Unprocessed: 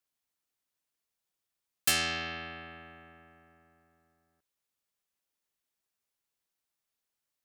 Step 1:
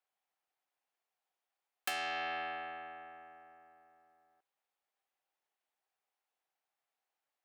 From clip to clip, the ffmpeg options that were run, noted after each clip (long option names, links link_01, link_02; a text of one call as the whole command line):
ffmpeg -i in.wav -filter_complex "[0:a]acrossover=split=340 3100:gain=0.1 1 0.251[link_01][link_02][link_03];[link_01][link_02][link_03]amix=inputs=3:normalize=0,acompressor=threshold=-36dB:ratio=10,equalizer=frequency=770:width_type=o:width=0.33:gain=10,volume=1.5dB" out.wav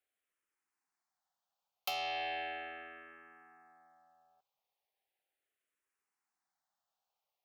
ffmpeg -i in.wav -filter_complex "[0:a]asplit=2[link_01][link_02];[link_02]afreqshift=-0.37[link_03];[link_01][link_03]amix=inputs=2:normalize=1,volume=2.5dB" out.wav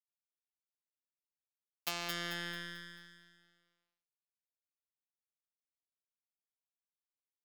ffmpeg -i in.wav -af "afftfilt=real='hypot(re,im)*cos(PI*b)':imag='0':win_size=1024:overlap=0.75,aeval=exprs='sgn(val(0))*max(abs(val(0))-0.00631,0)':channel_layout=same,aecho=1:1:220|440|660|880|1100:0.631|0.265|0.111|0.0467|0.0196,volume=6.5dB" out.wav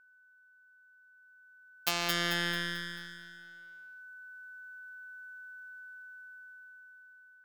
ffmpeg -i in.wav -af "aeval=exprs='val(0)+0.000891*sin(2*PI*1500*n/s)':channel_layout=same,dynaudnorm=framelen=530:gausssize=7:maxgain=15dB,volume=1dB" out.wav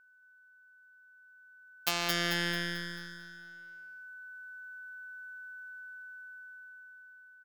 ffmpeg -i in.wav -af "aecho=1:1:226:0.224" out.wav